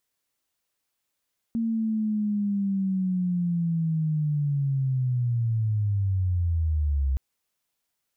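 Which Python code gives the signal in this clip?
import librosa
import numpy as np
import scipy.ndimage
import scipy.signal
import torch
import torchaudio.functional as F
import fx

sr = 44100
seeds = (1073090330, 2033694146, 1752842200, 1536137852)

y = fx.chirp(sr, length_s=5.62, from_hz=230.0, to_hz=65.0, law='linear', from_db=-23.0, to_db=-21.0)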